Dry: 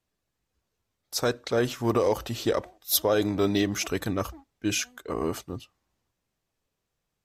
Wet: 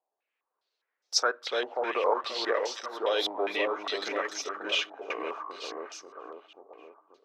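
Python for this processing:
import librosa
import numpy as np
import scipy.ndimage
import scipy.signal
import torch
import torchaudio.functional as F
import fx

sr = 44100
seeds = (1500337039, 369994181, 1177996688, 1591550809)

y = scipy.signal.sosfilt(scipy.signal.butter(4, 420.0, 'highpass', fs=sr, output='sos'), x)
y = fx.echo_split(y, sr, split_hz=1100.0, low_ms=535, high_ms=294, feedback_pct=52, wet_db=-3.5)
y = fx.filter_held_lowpass(y, sr, hz=4.9, low_hz=810.0, high_hz=5600.0)
y = F.gain(torch.from_numpy(y), -4.5).numpy()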